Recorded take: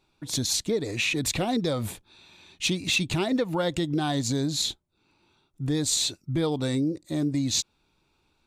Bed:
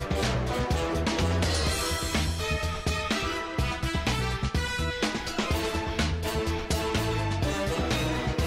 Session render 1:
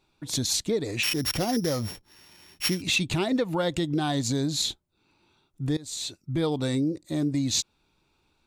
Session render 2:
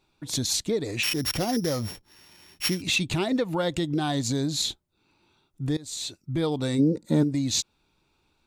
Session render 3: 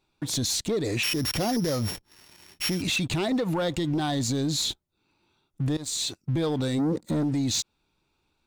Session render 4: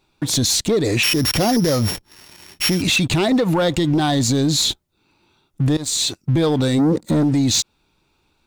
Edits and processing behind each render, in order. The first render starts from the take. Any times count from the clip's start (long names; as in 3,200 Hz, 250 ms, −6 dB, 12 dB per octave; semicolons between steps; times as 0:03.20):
0:01.03–0:02.82: samples sorted by size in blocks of 8 samples; 0:05.77–0:06.44: fade in, from −21.5 dB
0:06.78–0:07.22: hollow resonant body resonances 210/460/890/1,400 Hz, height 14 dB → 17 dB
leveller curve on the samples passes 2; brickwall limiter −20.5 dBFS, peak gain reduction 9.5 dB
level +9 dB